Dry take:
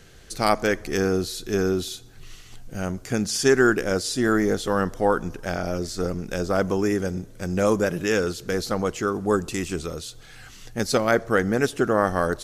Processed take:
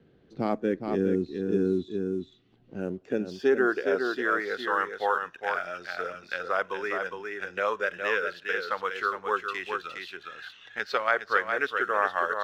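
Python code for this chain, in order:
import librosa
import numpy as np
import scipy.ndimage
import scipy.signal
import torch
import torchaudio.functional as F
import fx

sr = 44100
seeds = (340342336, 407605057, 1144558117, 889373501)

p1 = fx.filter_sweep_bandpass(x, sr, from_hz=250.0, to_hz=1400.0, start_s=2.34, end_s=4.52, q=1.1)
p2 = fx.lowpass_res(p1, sr, hz=3700.0, q=1.8)
p3 = np.sign(p2) * np.maximum(np.abs(p2) - 10.0 ** (-45.5 / 20.0), 0.0)
p4 = p2 + F.gain(torch.from_numpy(p3), -3.5).numpy()
p5 = fx.noise_reduce_blind(p4, sr, reduce_db=10)
p6 = p5 + fx.echo_single(p5, sr, ms=411, db=-6.5, dry=0)
p7 = fx.band_squash(p6, sr, depth_pct=40)
y = F.gain(torch.from_numpy(p7), -4.0).numpy()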